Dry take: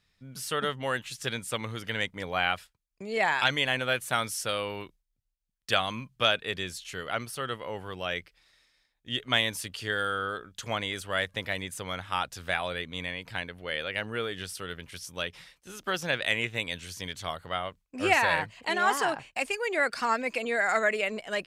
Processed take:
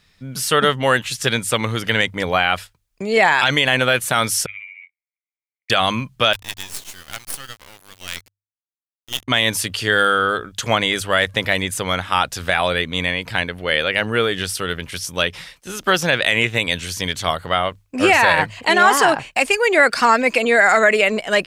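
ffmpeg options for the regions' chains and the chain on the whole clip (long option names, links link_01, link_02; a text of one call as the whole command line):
ffmpeg -i in.wav -filter_complex "[0:a]asettb=1/sr,asplit=3[link_01][link_02][link_03];[link_01]atrim=end=4.464[link_04];[link_02]atrim=start=4.46:end=5.7,asetpts=PTS-STARTPTS,afade=type=in:duration=0.004:curve=qsin,afade=type=out:start_time=1.236:duration=0.004:curve=qsin,asuperpass=centerf=2200:order=4:qfactor=7.3,tremolo=f=88:d=0.75[link_05];[link_03]atrim=start=5.696[link_06];[link_04][link_05]acrossfade=duration=0.004:curve1=hsin:curve2=qsin[link_07];[link_07][link_06]acrossfade=duration=0.004:curve1=qsin:curve2=hsin,asettb=1/sr,asplit=3[link_08][link_09][link_10];[link_08]atrim=end=6.334[link_11];[link_09]atrim=start=6.33:end=9.28,asetpts=PTS-STARTPTS,afade=type=in:duration=0.004:curve=qsin,afade=type=out:start_time=2.946:duration=0.004:curve=qsin,aderivative,acrusher=bits=6:dc=4:mix=0:aa=0.000001[link_12];[link_10]atrim=start=9.276[link_13];[link_11][link_12]acrossfade=duration=0.004:curve1=hsin:curve2=qsin[link_14];[link_14][link_13]acrossfade=duration=0.004:curve1=qsin:curve2=hsin,bandreject=frequency=50:width_type=h:width=6,bandreject=frequency=100:width_type=h:width=6,alimiter=level_in=16dB:limit=-1dB:release=50:level=0:latency=1,volume=-2dB" out.wav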